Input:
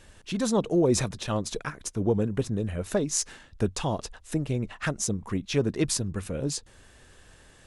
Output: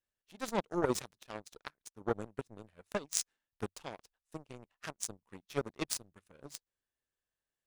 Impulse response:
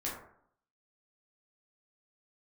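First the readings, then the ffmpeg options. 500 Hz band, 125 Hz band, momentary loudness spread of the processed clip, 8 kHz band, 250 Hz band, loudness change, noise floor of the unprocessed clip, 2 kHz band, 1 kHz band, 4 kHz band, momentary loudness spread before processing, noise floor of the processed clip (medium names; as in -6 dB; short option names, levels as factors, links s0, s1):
-11.0 dB, -18.5 dB, 17 LU, -9.5 dB, -14.5 dB, -11.0 dB, -55 dBFS, -8.5 dB, -6.0 dB, -10.0 dB, 9 LU, under -85 dBFS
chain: -af "lowshelf=f=230:g=-8.5,aeval=exprs='0.422*(cos(1*acos(clip(val(0)/0.422,-1,1)))-cos(1*PI/2))+0.0596*(cos(7*acos(clip(val(0)/0.422,-1,1)))-cos(7*PI/2))':c=same"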